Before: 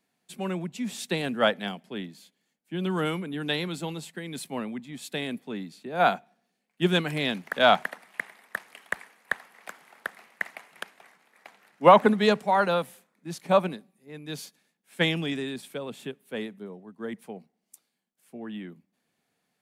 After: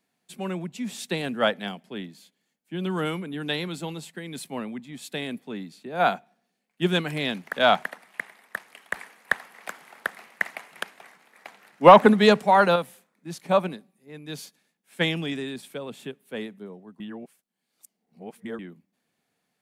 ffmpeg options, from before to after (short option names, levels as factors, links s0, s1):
-filter_complex "[0:a]asettb=1/sr,asplit=3[s0][s1][s2];[s0]atrim=end=8.944[s3];[s1]atrim=start=8.94:end=12.76,asetpts=PTS-STARTPTS,afade=t=in:d=0.004:c=qsin,afade=t=out:st=3.816:d=0.004:c=qsin,acontrast=31[s4];[s2]atrim=start=12.756[s5];[s3][s4]acrossfade=d=0.004:c1=hsin:c2=qsin[s6];[s6][s5]acrossfade=d=0.004:c1=qsin:c2=hsin,asplit=3[s7][s8][s9];[s7]atrim=end=17.002[s10];[s8]atrim=start=16.998:end=18.592,asetpts=PTS-STARTPTS,areverse[s11];[s9]atrim=start=18.588[s12];[s10][s11]acrossfade=d=0.004:c1=hsin:c2=hsin[s13];[s13][s12]acrossfade=d=0.004:c1=hsin:c2=hsin"